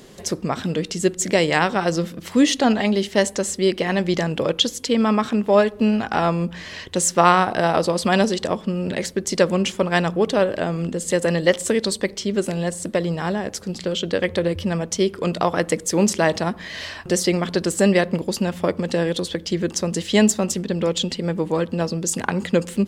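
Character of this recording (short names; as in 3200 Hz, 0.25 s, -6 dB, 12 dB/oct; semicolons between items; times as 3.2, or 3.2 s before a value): noise floor -40 dBFS; spectral tilt -4.5 dB/oct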